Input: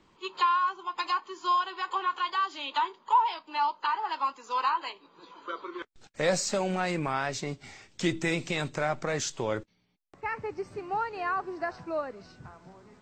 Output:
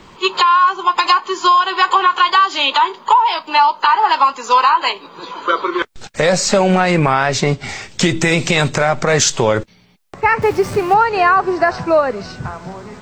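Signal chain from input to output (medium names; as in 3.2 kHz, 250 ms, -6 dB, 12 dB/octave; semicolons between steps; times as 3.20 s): 10.42–10.94 s: jump at every zero crossing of -48 dBFS; peaking EQ 300 Hz -5.5 dB 0.37 oct; compression 12:1, threshold -29 dBFS, peak gain reduction 12 dB; 6.32–7.69 s: treble shelf 5.7 kHz -8.5 dB; loudness maximiser +22.5 dB; trim -1 dB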